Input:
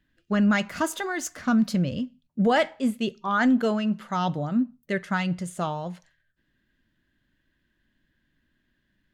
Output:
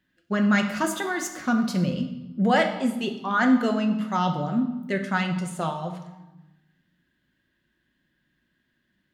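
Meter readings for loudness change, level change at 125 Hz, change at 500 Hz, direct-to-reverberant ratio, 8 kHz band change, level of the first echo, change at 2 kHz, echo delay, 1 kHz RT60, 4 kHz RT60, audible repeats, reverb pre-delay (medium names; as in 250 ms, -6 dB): +1.0 dB, +1.0 dB, 0.0 dB, 4.0 dB, +1.0 dB, no echo, +2.0 dB, no echo, 1.0 s, 0.85 s, no echo, 5 ms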